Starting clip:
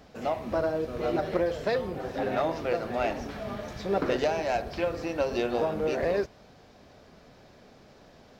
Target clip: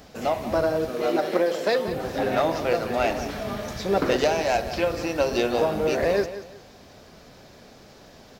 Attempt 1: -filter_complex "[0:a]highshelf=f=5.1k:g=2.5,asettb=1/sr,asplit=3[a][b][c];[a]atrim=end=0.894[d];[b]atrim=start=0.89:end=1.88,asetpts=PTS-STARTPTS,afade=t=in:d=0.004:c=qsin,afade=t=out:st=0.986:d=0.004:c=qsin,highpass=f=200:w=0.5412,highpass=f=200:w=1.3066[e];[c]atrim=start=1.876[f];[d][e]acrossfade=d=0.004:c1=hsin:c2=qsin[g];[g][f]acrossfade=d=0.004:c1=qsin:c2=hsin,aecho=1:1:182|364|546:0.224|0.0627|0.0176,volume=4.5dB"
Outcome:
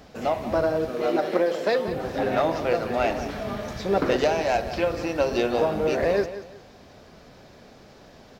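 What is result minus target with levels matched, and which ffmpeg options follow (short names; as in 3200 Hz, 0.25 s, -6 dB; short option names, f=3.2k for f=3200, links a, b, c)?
8000 Hz band -4.5 dB
-filter_complex "[0:a]highshelf=f=5.1k:g=10,asettb=1/sr,asplit=3[a][b][c];[a]atrim=end=0.894[d];[b]atrim=start=0.89:end=1.88,asetpts=PTS-STARTPTS,afade=t=in:d=0.004:c=qsin,afade=t=out:st=0.986:d=0.004:c=qsin,highpass=f=200:w=0.5412,highpass=f=200:w=1.3066[e];[c]atrim=start=1.876[f];[d][e]acrossfade=d=0.004:c1=hsin:c2=qsin[g];[g][f]acrossfade=d=0.004:c1=qsin:c2=hsin,aecho=1:1:182|364|546:0.224|0.0627|0.0176,volume=4.5dB"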